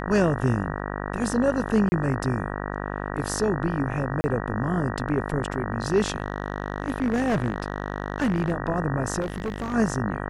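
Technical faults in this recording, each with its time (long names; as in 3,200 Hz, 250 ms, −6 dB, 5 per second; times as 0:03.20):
mains buzz 50 Hz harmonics 38 −31 dBFS
0:01.89–0:01.92: drop-out 30 ms
0:04.21–0:04.24: drop-out 30 ms
0:06.14–0:08.52: clipping −18 dBFS
0:09.20–0:09.74: clipping −24.5 dBFS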